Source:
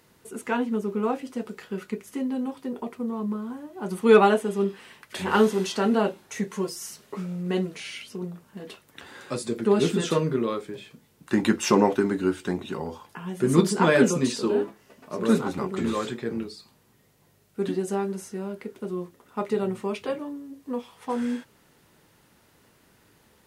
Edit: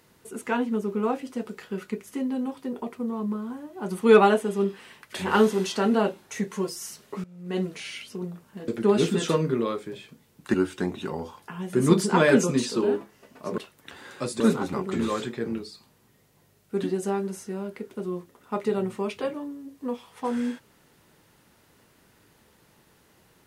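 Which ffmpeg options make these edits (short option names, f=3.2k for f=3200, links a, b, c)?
-filter_complex "[0:a]asplit=6[a][b][c][d][e][f];[a]atrim=end=7.24,asetpts=PTS-STARTPTS,afade=t=out:st=7.236:d=0.004:c=hsin:silence=0.125893[g];[b]atrim=start=7.24:end=8.682,asetpts=PTS-STARTPTS,afade=t=in:d=0.38:c=qua:silence=0.125893[h];[c]atrim=start=9.498:end=11.362[i];[d]atrim=start=12.208:end=15.252[j];[e]atrim=start=8.678:end=9.502[k];[f]atrim=start=15.248[l];[g][h]concat=n=2:v=0:a=1[m];[m][i]acrossfade=d=0.004:c1=hsin:c2=hsin[n];[n][j]acrossfade=d=0.004:c1=hsin:c2=hsin[o];[o][k]acrossfade=d=0.004:c1=hsin:c2=hsin[p];[p][l]acrossfade=d=0.004:c1=hsin:c2=hsin"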